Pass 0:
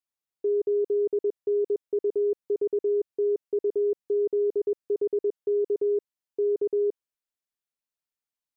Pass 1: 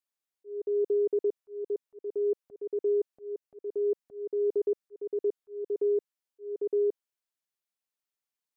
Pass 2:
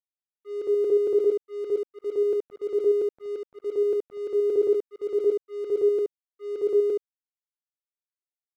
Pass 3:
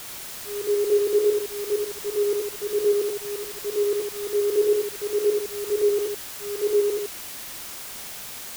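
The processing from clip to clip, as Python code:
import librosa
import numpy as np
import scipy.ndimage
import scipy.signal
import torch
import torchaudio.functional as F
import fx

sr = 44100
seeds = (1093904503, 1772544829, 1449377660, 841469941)

y1 = fx.highpass(x, sr, hz=250.0, slope=6)
y1 = fx.auto_swell(y1, sr, attack_ms=384.0)
y2 = fx.room_early_taps(y1, sr, ms=(24, 72), db=(-14.0, -5.0))
y2 = np.sign(y2) * np.maximum(np.abs(y2) - 10.0 ** (-55.0 / 20.0), 0.0)
y2 = F.gain(torch.from_numpy(y2), 6.5).numpy()
y3 = fx.dmg_noise_colour(y2, sr, seeds[0], colour='white', level_db=-38.0)
y3 = y3 + 10.0 ** (-5.0 / 20.0) * np.pad(y3, (int(86 * sr / 1000.0), 0))[:len(y3)]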